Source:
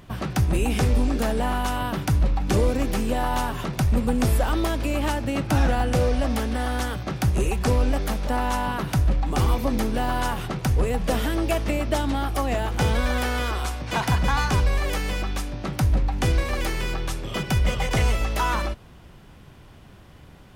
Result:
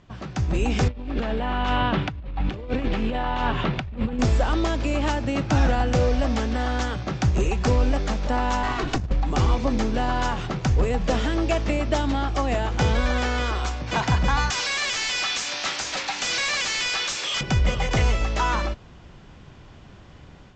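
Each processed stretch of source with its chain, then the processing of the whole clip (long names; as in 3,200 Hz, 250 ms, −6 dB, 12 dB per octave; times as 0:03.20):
0:00.88–0:04.19: high shelf with overshoot 4,600 Hz −12.5 dB, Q 1.5 + compressor whose output falls as the input rises −25 dBFS, ratio −0.5
0:08.63–0:09.11: lower of the sound and its delayed copy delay 2.7 ms + compressor whose output falls as the input rises −24 dBFS, ratio −0.5
0:14.50–0:17.41: first difference + mid-hump overdrive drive 34 dB, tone 5,300 Hz, clips at −16.5 dBFS
whole clip: Butterworth low-pass 7,600 Hz 96 dB per octave; automatic gain control gain up to 8.5 dB; level −7 dB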